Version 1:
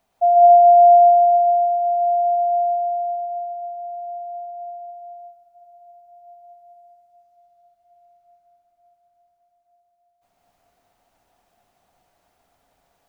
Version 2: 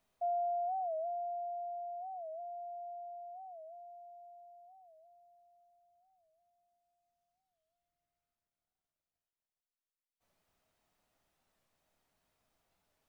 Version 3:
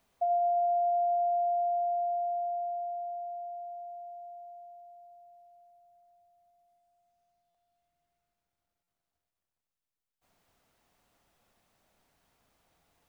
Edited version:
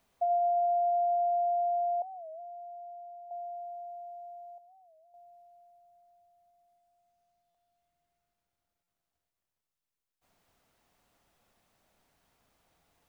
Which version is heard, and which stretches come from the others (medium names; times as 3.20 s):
3
2.02–3.31 s: from 2
4.58–5.14 s: from 2
not used: 1